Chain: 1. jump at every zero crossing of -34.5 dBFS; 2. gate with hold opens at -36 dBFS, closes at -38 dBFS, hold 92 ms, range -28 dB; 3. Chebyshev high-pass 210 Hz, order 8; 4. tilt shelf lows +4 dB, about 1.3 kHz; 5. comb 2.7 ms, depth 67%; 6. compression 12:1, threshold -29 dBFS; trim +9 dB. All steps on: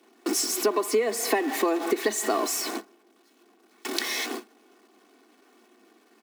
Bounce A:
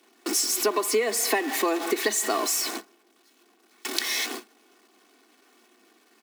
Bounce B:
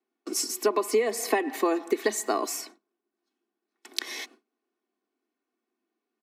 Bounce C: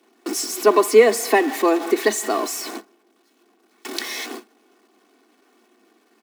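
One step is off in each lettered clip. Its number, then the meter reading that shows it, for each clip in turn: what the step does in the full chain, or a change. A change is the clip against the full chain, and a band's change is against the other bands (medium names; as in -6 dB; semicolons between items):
4, crest factor change +2.5 dB; 1, distortion -7 dB; 6, mean gain reduction 3.5 dB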